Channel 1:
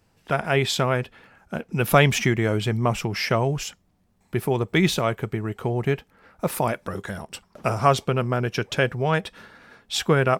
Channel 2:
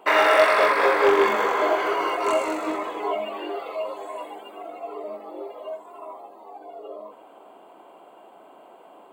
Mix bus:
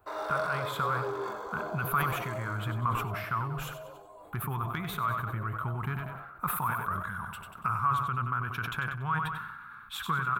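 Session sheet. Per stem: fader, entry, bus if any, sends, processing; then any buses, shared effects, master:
−3.5 dB, 0.00 s, no send, echo send −9.5 dB, drawn EQ curve 130 Hz 0 dB, 620 Hz −22 dB, 1,100 Hz +12 dB, 2,700 Hz +9 dB, 5,100 Hz −21 dB, 14,000 Hz +5 dB; downward compressor 3 to 1, threshold −27 dBFS, peak gain reduction 16 dB
−17.5 dB, 0.00 s, no send, no echo send, Butterworth high-pass 180 Hz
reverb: not used
echo: repeating echo 95 ms, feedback 47%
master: flat-topped bell 2,300 Hz −14.5 dB 1 octave; level that may fall only so fast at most 41 dB per second

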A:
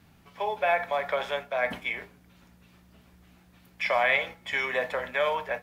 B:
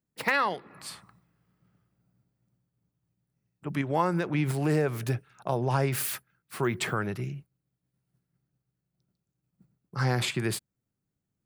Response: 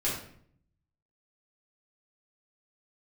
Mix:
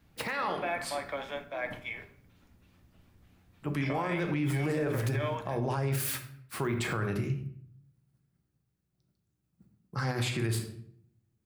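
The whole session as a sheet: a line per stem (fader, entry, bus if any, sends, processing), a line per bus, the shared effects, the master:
−9.5 dB, 0.00 s, send −15.5 dB, sub-octave generator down 1 octave, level 0 dB
−1.5 dB, 0.00 s, send −10.5 dB, parametric band 75 Hz +13.5 dB 0.37 octaves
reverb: on, RT60 0.60 s, pre-delay 4 ms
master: brickwall limiter −22.5 dBFS, peak gain reduction 13 dB

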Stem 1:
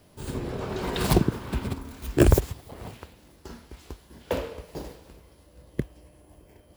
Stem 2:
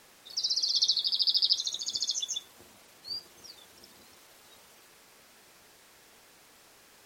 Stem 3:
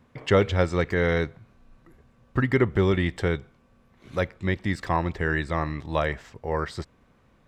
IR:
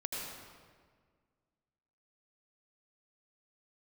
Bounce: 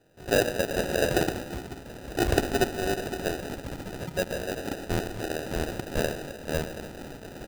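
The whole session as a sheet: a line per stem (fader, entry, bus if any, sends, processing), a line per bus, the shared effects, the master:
−10.5 dB, 0.00 s, send −8 dB, slew-rate limiting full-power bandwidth 120 Hz
+2.0 dB, 1.85 s, no send, brickwall limiter −26 dBFS, peak gain reduction 14.5 dB; envelope flattener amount 50%
−7.0 dB, 0.00 s, send −7 dB, high-pass filter 440 Hz 6 dB per octave; centre clipping without the shift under −29 dBFS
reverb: on, RT60 1.7 s, pre-delay 74 ms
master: flat-topped bell 680 Hz +8 dB 2.9 octaves; sample-rate reduction 1,100 Hz, jitter 0%; amplitude modulation by smooth noise, depth 60%

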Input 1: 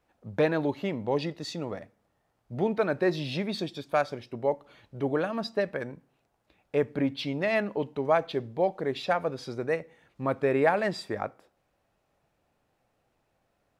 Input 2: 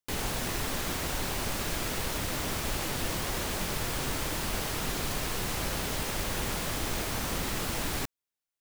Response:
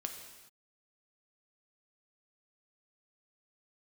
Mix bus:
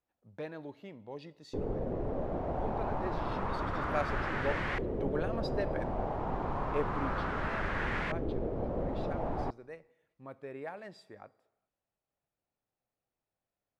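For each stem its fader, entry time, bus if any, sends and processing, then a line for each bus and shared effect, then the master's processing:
0:03.60 −18 dB → 0:04.01 −9 dB → 0:06.93 −9 dB → 0:07.21 −20 dB, 0.00 s, send −14.5 dB, no processing
−2.5 dB, 1.45 s, send −19.5 dB, auto-filter low-pass saw up 0.3 Hz 420–2,000 Hz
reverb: on, pre-delay 3 ms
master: no processing

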